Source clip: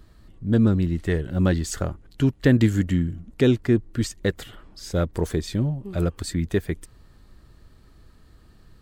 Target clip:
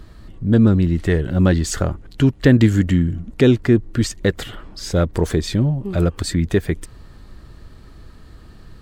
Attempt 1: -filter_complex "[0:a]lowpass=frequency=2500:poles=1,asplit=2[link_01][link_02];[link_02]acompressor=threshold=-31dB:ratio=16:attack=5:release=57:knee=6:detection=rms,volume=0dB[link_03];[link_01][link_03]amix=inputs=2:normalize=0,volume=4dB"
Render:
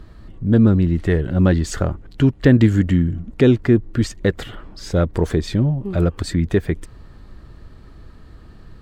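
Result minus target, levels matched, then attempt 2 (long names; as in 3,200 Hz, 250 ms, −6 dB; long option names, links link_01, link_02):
8,000 Hz band −5.5 dB
-filter_complex "[0:a]lowpass=frequency=6900:poles=1,asplit=2[link_01][link_02];[link_02]acompressor=threshold=-31dB:ratio=16:attack=5:release=57:knee=6:detection=rms,volume=0dB[link_03];[link_01][link_03]amix=inputs=2:normalize=0,volume=4dB"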